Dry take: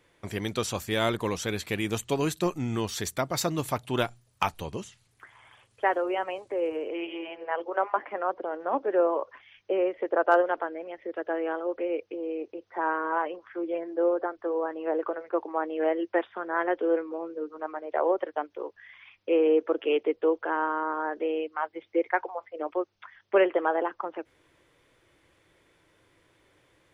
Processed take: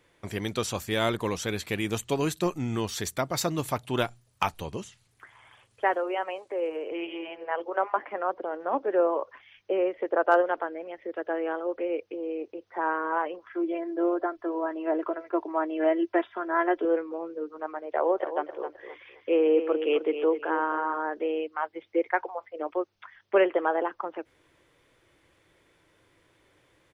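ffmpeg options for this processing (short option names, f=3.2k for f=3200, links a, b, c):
-filter_complex "[0:a]asettb=1/sr,asplit=3[a][b][c];[a]atrim=end=5.954[d];[b]atrim=start=5.95:end=6.92,asetpts=PTS-STARTPTS,afade=t=in:d=0.004:c=qsin,afade=t=out:st=0.966:d=0.004:c=qsin,bass=f=250:g=-12,treble=f=4k:g=-2[e];[c]atrim=start=6.916[f];[d][e]acrossfade=d=0.004:c1=hsin:c2=qsin[g];[g][f]acrossfade=d=0.004:c1=qsin:c2=hsin,asettb=1/sr,asplit=3[h][i][j];[h]atrim=end=13.464[k];[i]atrim=start=13.46:end=16.85,asetpts=PTS-STARTPTS,afade=t=in:d=0.004:c=qsin,afade=t=out:st=3.386:d=0.004:c=qsin,aecho=1:1:3:0.65,atrim=end_sample=149499[l];[j]atrim=start=16.846[m];[k][l]acrossfade=d=0.004:c1=hsin:c2=qsin[n];[n][m]acrossfade=d=0.004:c1=qsin:c2=hsin,asplit=3[o][p][q];[o]afade=t=out:st=18.15:d=0.02[r];[p]aecho=1:1:261|522|783:0.335|0.0837|0.0209,afade=t=in:st=18.15:d=0.02,afade=t=out:st=20.96:d=0.02[s];[q]afade=t=in:st=20.96:d=0.02[t];[r][s][t]amix=inputs=3:normalize=0"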